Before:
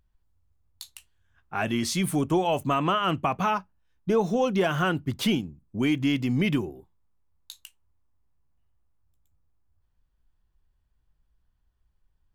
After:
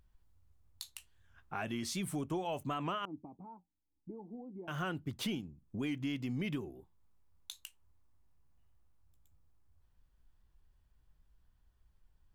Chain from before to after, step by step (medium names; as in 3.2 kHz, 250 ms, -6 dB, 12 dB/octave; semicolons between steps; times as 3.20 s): compression 2:1, threshold -48 dBFS, peak gain reduction 15.5 dB; 3.05–4.68 s: cascade formant filter u; warped record 78 rpm, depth 100 cents; trim +1.5 dB